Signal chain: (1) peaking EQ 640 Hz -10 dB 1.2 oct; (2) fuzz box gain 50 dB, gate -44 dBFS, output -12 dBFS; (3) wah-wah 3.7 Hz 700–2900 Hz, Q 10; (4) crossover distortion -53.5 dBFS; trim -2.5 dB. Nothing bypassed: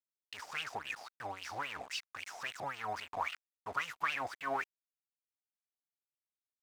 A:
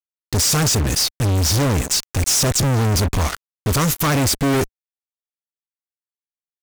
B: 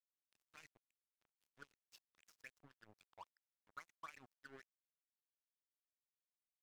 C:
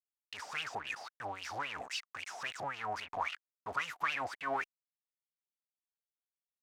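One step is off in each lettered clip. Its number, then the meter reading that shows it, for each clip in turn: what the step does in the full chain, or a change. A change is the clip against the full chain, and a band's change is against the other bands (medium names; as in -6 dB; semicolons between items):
3, 125 Hz band +18.5 dB; 2, distortion -2 dB; 4, distortion -20 dB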